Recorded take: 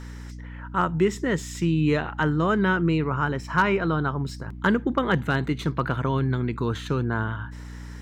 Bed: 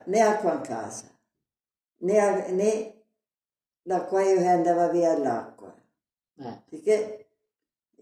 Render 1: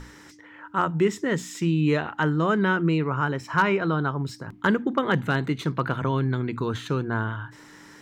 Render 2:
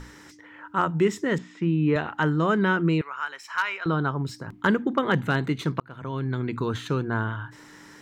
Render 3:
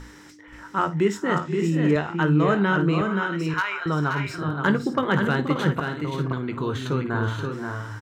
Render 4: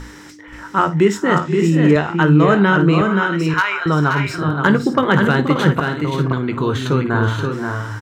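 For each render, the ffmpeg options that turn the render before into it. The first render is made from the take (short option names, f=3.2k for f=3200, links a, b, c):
-af "bandreject=f=60:t=h:w=6,bandreject=f=120:t=h:w=6,bandreject=f=180:t=h:w=6,bandreject=f=240:t=h:w=6"
-filter_complex "[0:a]asettb=1/sr,asplit=3[a][b][c];[a]atrim=end=1.384[d];[b]atrim=start=1.38:end=1.96,asetpts=PTS-STARTPTS,afade=t=in:d=0.004:c=qsin,afade=t=out:st=0.576:d=0.004:c=qsin,highpass=110,lowpass=2k[e];[c]atrim=start=1.956[f];[d][e]acrossfade=d=0.004:c1=hsin:c2=qsin[g];[g][f]acrossfade=d=0.004:c1=qsin:c2=hsin,asettb=1/sr,asplit=3[h][i][j];[h]atrim=end=3.014[k];[i]atrim=start=3.01:end=3.86,asetpts=PTS-STARTPTS,afade=t=in:d=0.004:c=qsin,afade=t=out:st=0.846:d=0.004:c=qsin,highpass=1.4k[l];[j]atrim=start=3.856[m];[k][l]acrossfade=d=0.004:c1=hsin:c2=qsin[n];[n][m]acrossfade=d=0.004:c1=qsin:c2=hsin,asplit=2[o][p];[o]atrim=end=5.8,asetpts=PTS-STARTPTS,afade=t=out:st=5.796:d=0.004:c=hsin[q];[p]atrim=start=5.8,asetpts=PTS-STARTPTS,afade=t=in:d=0.7[r];[q][r]concat=n=2:v=0:a=1"
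-filter_complex "[0:a]asplit=2[a][b];[b]adelay=20,volume=-11dB[c];[a][c]amix=inputs=2:normalize=0,aecho=1:1:54|479|526|582:0.158|0.188|0.562|0.266"
-af "volume=8dB,alimiter=limit=-3dB:level=0:latency=1"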